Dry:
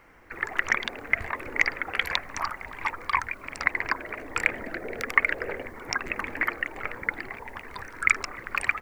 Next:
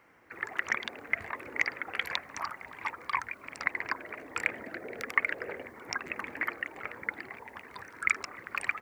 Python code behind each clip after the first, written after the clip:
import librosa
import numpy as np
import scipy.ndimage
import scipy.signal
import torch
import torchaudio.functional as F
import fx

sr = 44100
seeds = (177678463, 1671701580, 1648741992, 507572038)

y = scipy.signal.sosfilt(scipy.signal.butter(2, 110.0, 'highpass', fs=sr, output='sos'), x)
y = y * 10.0 ** (-6.0 / 20.0)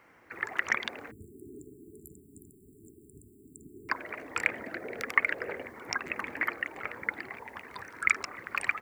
y = fx.spec_erase(x, sr, start_s=1.11, length_s=2.79, low_hz=450.0, high_hz=7100.0)
y = y * 10.0 ** (2.0 / 20.0)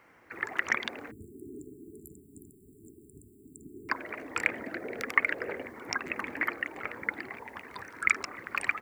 y = fx.dynamic_eq(x, sr, hz=280.0, q=1.5, threshold_db=-55.0, ratio=4.0, max_db=4)